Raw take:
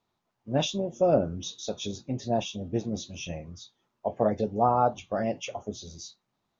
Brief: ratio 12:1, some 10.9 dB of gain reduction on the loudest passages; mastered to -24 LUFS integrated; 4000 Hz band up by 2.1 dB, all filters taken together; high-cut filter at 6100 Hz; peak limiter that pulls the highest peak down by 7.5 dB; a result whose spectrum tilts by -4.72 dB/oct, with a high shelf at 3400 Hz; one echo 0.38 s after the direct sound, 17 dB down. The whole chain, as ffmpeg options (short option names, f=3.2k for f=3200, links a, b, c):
-af "lowpass=6.1k,highshelf=f=3.4k:g=-4.5,equalizer=f=4k:t=o:g=6,acompressor=threshold=-29dB:ratio=12,alimiter=level_in=1dB:limit=-24dB:level=0:latency=1,volume=-1dB,aecho=1:1:380:0.141,volume=13.5dB"